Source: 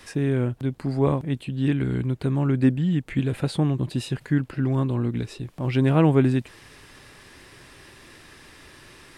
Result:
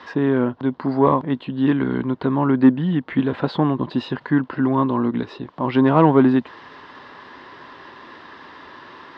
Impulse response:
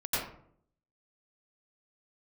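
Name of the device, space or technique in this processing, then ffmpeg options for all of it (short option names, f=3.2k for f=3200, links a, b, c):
overdrive pedal into a guitar cabinet: -filter_complex "[0:a]asplit=2[a][b];[b]highpass=f=720:p=1,volume=12dB,asoftclip=type=tanh:threshold=-7.5dB[c];[a][c]amix=inputs=2:normalize=0,lowpass=f=1.7k:p=1,volume=-6dB,highpass=89,equalizer=f=120:t=q:w=4:g=-6,equalizer=f=250:t=q:w=4:g=5,equalizer=f=1k:t=q:w=4:g=9,equalizer=f=2.4k:t=q:w=4:g=-9,lowpass=f=4.4k:w=0.5412,lowpass=f=4.4k:w=1.3066,volume=4dB"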